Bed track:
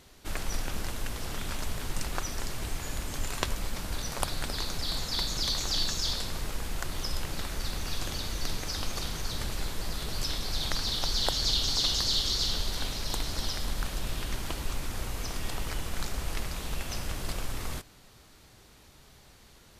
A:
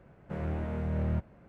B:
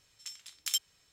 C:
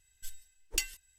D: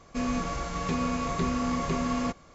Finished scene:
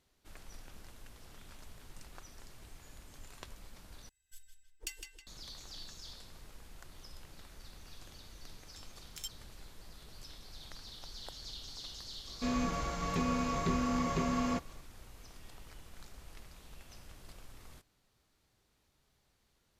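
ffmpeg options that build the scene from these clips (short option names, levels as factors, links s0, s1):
-filter_complex "[0:a]volume=0.112[s0];[3:a]asplit=2[s1][s2];[s2]adelay=159,lowpass=f=4900:p=1,volume=0.631,asplit=2[s3][s4];[s4]adelay=159,lowpass=f=4900:p=1,volume=0.49,asplit=2[s5][s6];[s6]adelay=159,lowpass=f=4900:p=1,volume=0.49,asplit=2[s7][s8];[s8]adelay=159,lowpass=f=4900:p=1,volume=0.49,asplit=2[s9][s10];[s10]adelay=159,lowpass=f=4900:p=1,volume=0.49,asplit=2[s11][s12];[s12]adelay=159,lowpass=f=4900:p=1,volume=0.49[s13];[s1][s3][s5][s7][s9][s11][s13]amix=inputs=7:normalize=0[s14];[s0]asplit=2[s15][s16];[s15]atrim=end=4.094[s17];[s14]atrim=end=1.18,asetpts=PTS-STARTPTS,volume=0.282[s18];[s16]atrim=start=5.266[s19];[2:a]atrim=end=1.12,asetpts=PTS-STARTPTS,volume=0.224,afade=t=in:d=0.004:c=hsin,afade=t=out:st=1.116:d=0.004:c=hsin,adelay=374850S[s20];[4:a]atrim=end=2.54,asetpts=PTS-STARTPTS,volume=0.631,afade=t=in:d=0.004:c=hsin,afade=t=out:st=2.536:d=0.004:c=hsin,adelay=12270[s21];[s17][s18]acrossfade=d=0.004:c1=hsin:c2=hsin[s22];[s22][s19]acrossfade=d=0.004:c1=hsin:c2=hsin[s23];[s23][s20][s21]amix=inputs=3:normalize=0"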